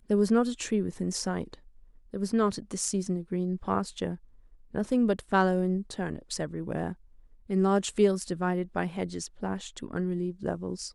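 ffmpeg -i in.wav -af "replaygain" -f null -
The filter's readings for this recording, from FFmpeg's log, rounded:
track_gain = +8.6 dB
track_peak = 0.189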